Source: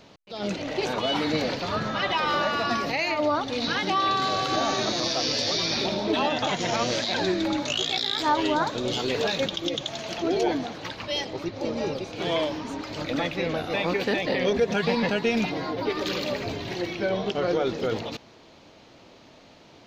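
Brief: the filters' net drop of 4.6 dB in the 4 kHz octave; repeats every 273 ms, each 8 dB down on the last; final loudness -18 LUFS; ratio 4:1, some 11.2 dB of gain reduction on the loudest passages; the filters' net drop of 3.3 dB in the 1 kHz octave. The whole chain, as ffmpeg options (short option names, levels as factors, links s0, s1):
-af "equalizer=f=1000:t=o:g=-4,equalizer=f=4000:t=o:g=-5.5,acompressor=threshold=0.0224:ratio=4,aecho=1:1:273|546|819|1092|1365:0.398|0.159|0.0637|0.0255|0.0102,volume=6.68"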